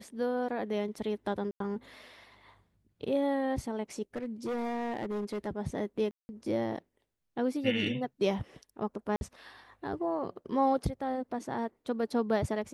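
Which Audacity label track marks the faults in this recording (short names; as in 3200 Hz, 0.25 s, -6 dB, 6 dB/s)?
1.510000	1.600000	gap 93 ms
4.160000	5.480000	clipped -30.5 dBFS
6.110000	6.290000	gap 0.18 s
9.160000	9.210000	gap 51 ms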